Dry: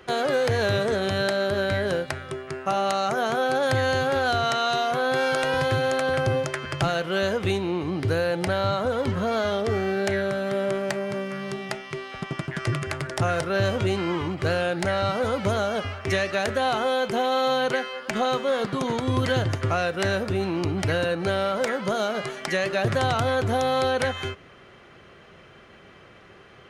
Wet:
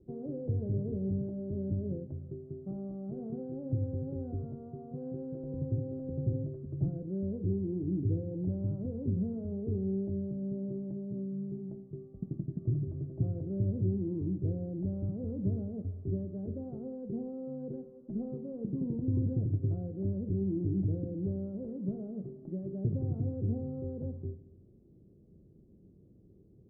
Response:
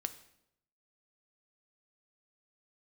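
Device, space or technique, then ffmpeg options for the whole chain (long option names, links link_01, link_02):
next room: -filter_complex "[0:a]lowpass=frequency=320:width=0.5412,lowpass=frequency=320:width=1.3066[link_01];[1:a]atrim=start_sample=2205[link_02];[link_01][link_02]afir=irnorm=-1:irlink=0,volume=-3dB"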